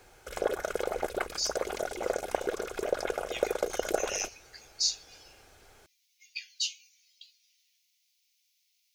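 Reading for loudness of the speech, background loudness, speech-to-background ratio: -34.5 LUFS, -33.5 LUFS, -1.0 dB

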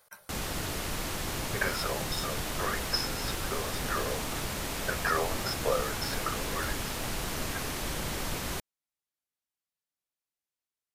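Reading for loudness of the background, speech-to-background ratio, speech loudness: -34.0 LUFS, -1.0 dB, -35.0 LUFS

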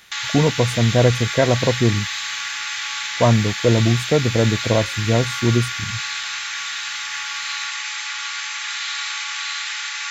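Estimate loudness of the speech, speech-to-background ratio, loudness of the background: -19.0 LUFS, 5.5 dB, -24.5 LUFS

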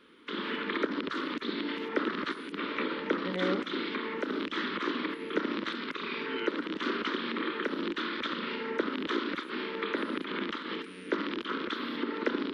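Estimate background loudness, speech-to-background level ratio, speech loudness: -33.5 LUFS, -4.0 dB, -37.5 LUFS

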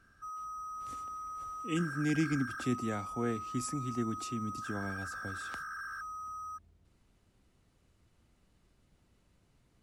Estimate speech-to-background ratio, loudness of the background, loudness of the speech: 5.0 dB, -41.5 LUFS, -36.5 LUFS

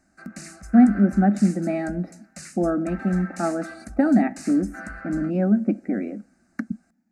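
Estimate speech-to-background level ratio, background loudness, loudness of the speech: 18.5 dB, -40.5 LUFS, -22.0 LUFS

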